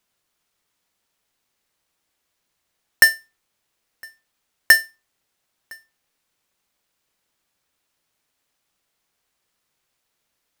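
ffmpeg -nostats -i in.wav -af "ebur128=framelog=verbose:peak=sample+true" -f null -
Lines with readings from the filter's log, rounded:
Integrated loudness:
  I:         -15.8 LUFS
  Threshold: -30.2 LUFS
Loudness range:
  LRA:         3.0 LU
  Threshold: -44.3 LUFS
  LRA low:   -24.6 LUFS
  LRA high:  -21.6 LUFS
Sample peak:
  Peak:       -4.5 dBFS
True peak:
  Peak:       -2.4 dBFS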